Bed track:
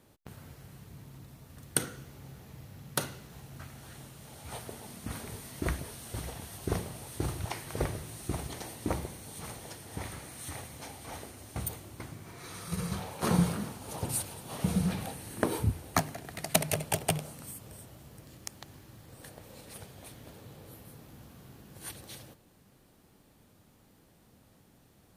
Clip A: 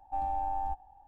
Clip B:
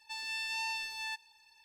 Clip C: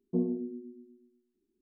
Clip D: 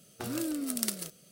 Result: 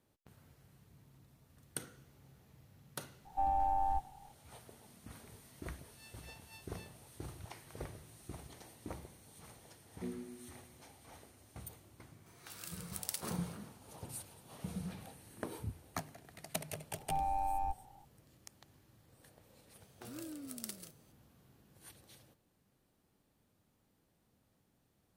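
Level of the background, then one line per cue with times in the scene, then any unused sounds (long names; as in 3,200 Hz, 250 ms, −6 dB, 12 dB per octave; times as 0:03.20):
bed track −13.5 dB
0:03.25: mix in A
0:05.79: mix in B −16.5 dB + tremolo with a sine in dB 3.9 Hz, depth 21 dB
0:09.88: mix in C −13.5 dB
0:12.26: mix in D −8 dB + high-pass filter 1,400 Hz
0:16.98: mix in A −2 dB + adaptive Wiener filter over 15 samples
0:19.81: mix in D −13 dB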